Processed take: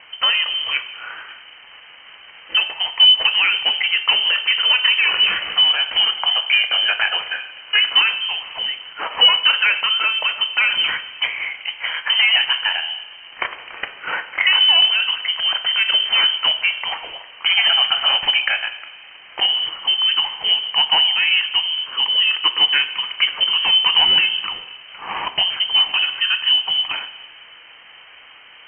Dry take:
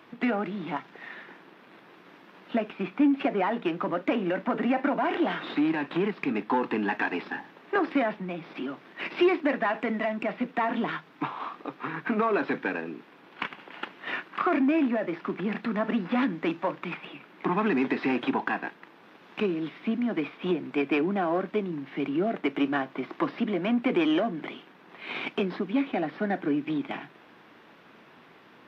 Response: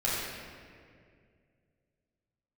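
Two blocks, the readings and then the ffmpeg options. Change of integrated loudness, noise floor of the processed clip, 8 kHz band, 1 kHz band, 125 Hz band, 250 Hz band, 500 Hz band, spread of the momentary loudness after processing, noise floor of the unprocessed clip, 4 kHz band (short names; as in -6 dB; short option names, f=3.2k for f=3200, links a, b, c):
+13.5 dB, -44 dBFS, n/a, +3.5 dB, under -10 dB, under -20 dB, -9.5 dB, 14 LU, -54 dBFS, +31.5 dB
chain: -filter_complex "[0:a]asplit=2[a][b];[1:a]atrim=start_sample=2205,asetrate=66150,aresample=44100[c];[b][c]afir=irnorm=-1:irlink=0,volume=-15.5dB[d];[a][d]amix=inputs=2:normalize=0,lowpass=f=2.8k:t=q:w=0.5098,lowpass=f=2.8k:t=q:w=0.6013,lowpass=f=2.8k:t=q:w=0.9,lowpass=f=2.8k:t=q:w=2.563,afreqshift=-3300,volume=8.5dB"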